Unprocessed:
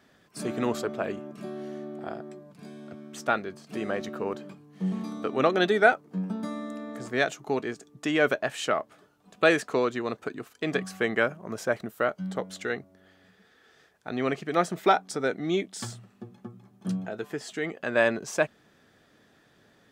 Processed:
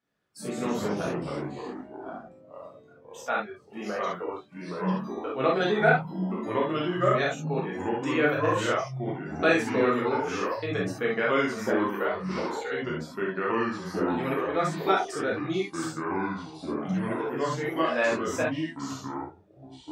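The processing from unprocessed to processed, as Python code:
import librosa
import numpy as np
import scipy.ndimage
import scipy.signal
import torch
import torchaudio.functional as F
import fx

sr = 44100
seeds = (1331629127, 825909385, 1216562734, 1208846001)

y = fx.noise_reduce_blind(x, sr, reduce_db=18)
y = fx.rev_gated(y, sr, seeds[0], gate_ms=90, shape='flat', drr_db=-4.5)
y = fx.echo_pitch(y, sr, ms=82, semitones=-3, count=3, db_per_echo=-3.0)
y = F.gain(torch.from_numpy(y), -7.0).numpy()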